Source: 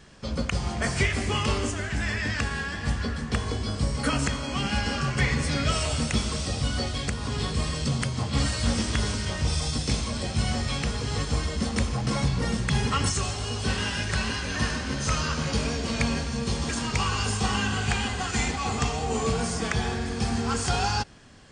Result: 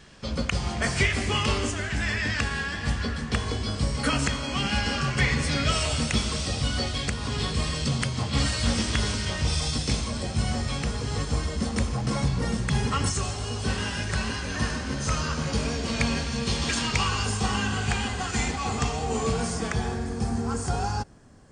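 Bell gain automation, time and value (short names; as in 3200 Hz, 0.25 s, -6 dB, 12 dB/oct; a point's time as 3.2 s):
bell 3100 Hz 1.9 oct
9.72 s +3 dB
10.26 s -3 dB
15.47 s -3 dB
16.76 s +8 dB
17.28 s -1.5 dB
19.45 s -1.5 dB
20.33 s -13.5 dB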